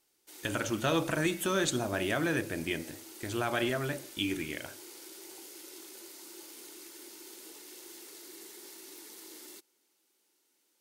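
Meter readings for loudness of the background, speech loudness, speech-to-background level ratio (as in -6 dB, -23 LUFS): -47.0 LUFS, -32.0 LUFS, 15.0 dB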